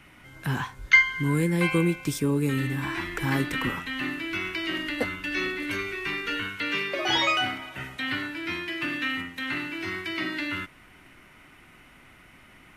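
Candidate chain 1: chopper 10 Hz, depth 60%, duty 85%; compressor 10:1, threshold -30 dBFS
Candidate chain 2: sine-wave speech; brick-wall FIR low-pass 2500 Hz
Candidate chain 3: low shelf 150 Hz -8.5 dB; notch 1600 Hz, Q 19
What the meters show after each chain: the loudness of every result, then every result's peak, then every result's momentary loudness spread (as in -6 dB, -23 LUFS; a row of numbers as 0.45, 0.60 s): -34.0, -19.0, -27.5 LUFS; -16.5, -1.0, -6.0 dBFS; 20, 27, 10 LU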